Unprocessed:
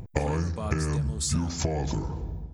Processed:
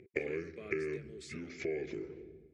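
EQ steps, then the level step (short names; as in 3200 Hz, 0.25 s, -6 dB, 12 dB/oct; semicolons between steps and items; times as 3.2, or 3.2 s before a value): dynamic EQ 1200 Hz, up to +6 dB, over -46 dBFS, Q 0.84; double band-pass 920 Hz, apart 2.5 oct; +2.0 dB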